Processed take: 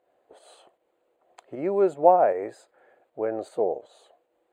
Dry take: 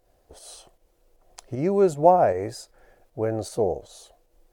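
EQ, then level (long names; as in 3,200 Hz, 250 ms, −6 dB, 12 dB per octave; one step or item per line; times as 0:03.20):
moving average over 8 samples
high-pass filter 340 Hz 12 dB per octave
0.0 dB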